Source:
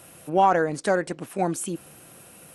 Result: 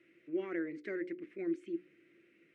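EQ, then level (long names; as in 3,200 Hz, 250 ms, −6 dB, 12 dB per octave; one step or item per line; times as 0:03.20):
pair of resonant band-passes 840 Hz, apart 2.6 octaves
high-frequency loss of the air 100 metres
mains-hum notches 60/120/180/240/300/360/420/480/540 Hz
−3.0 dB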